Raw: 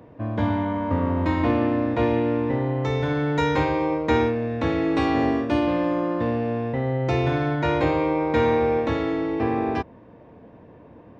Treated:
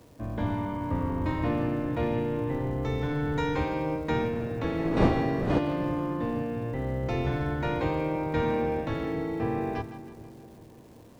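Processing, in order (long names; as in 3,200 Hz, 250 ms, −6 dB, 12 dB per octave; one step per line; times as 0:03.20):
sub-octave generator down 1 octave, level −3 dB
0:04.32–0:05.58: wind on the microphone 450 Hz −19 dBFS
bit reduction 10 bits
on a send: echo with a time of its own for lows and highs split 630 Hz, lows 405 ms, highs 160 ms, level −12.5 dB
on the sum: surface crackle 500 per second −43 dBFS
level −7.5 dB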